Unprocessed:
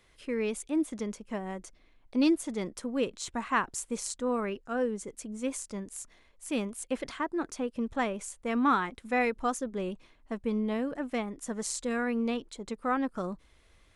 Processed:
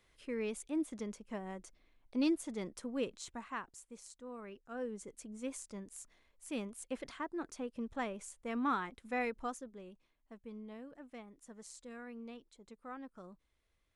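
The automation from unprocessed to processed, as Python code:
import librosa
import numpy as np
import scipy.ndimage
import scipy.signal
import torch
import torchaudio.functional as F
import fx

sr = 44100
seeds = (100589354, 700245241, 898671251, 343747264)

y = fx.gain(x, sr, db=fx.line((3.1, -7.0), (3.79, -18.0), (4.31, -18.0), (5.01, -8.5), (9.4, -8.5), (9.83, -18.0)))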